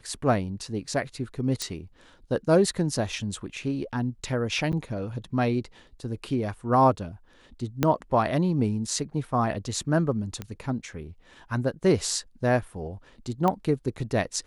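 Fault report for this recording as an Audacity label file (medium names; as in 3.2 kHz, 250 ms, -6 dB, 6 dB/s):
1.620000	1.620000	pop -14 dBFS
4.720000	4.730000	dropout 8.9 ms
7.830000	7.830000	pop -8 dBFS
10.420000	10.420000	pop -19 dBFS
13.480000	13.480000	pop -13 dBFS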